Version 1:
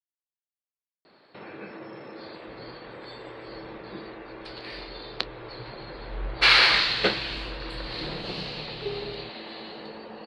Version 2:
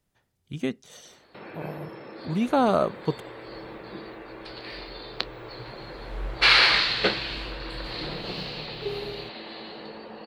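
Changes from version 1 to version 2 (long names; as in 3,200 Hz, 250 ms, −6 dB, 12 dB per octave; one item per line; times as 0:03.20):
speech: unmuted
second sound: remove high-frequency loss of the air 380 metres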